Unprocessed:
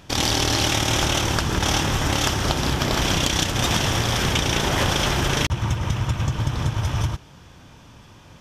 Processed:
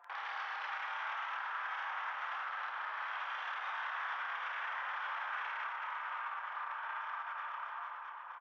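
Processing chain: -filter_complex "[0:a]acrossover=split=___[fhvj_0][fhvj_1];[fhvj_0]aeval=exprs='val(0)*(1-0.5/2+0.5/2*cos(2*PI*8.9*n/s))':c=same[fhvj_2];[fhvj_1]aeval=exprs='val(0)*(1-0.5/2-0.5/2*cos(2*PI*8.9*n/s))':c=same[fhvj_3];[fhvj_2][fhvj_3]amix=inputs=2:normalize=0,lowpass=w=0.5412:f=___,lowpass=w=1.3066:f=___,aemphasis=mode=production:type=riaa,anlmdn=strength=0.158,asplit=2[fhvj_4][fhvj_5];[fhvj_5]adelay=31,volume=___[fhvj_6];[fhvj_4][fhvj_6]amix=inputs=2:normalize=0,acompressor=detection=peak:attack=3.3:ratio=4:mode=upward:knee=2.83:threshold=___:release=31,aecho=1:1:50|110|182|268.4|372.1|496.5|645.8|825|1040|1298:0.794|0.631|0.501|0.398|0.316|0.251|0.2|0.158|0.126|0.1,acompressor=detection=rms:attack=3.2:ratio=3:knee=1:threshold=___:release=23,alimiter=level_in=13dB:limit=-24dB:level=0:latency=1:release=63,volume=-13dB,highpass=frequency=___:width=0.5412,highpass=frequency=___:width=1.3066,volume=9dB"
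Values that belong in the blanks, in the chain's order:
910, 1600, 1600, -7dB, -45dB, -39dB, 1000, 1000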